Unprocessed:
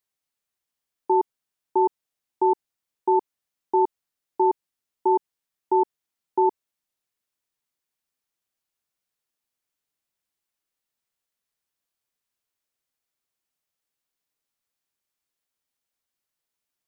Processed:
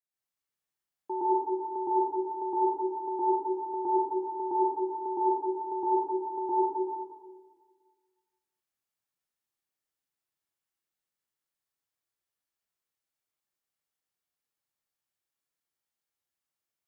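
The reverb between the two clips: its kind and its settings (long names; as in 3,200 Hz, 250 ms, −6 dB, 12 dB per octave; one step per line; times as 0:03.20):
dense smooth reverb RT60 1.7 s, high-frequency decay 0.65×, pre-delay 105 ms, DRR −9.5 dB
level −14 dB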